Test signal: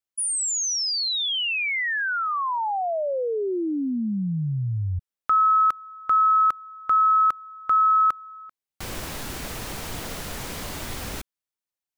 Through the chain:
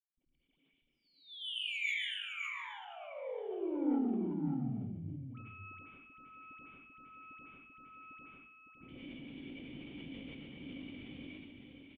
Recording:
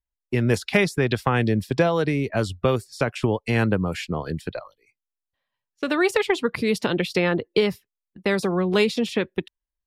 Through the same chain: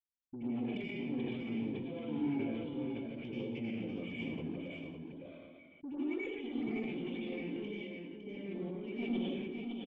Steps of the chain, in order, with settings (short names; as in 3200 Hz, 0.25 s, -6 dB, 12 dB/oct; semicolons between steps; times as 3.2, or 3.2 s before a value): half-wave gain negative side -7 dB; reverb removal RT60 1.2 s; HPF 190 Hz 6 dB/oct; dynamic EQ 690 Hz, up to +4 dB, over -38 dBFS, Q 0.73; compressor, threshold -24 dBFS; limiter -21.5 dBFS; vocal tract filter i; dispersion highs, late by 89 ms, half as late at 1000 Hz; soft clip -34 dBFS; on a send: echo 0.558 s -5.5 dB; on the sum: plate-style reverb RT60 0.83 s, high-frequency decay 1×, pre-delay 75 ms, DRR -7 dB; sustainer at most 24 dB/s; gain -3.5 dB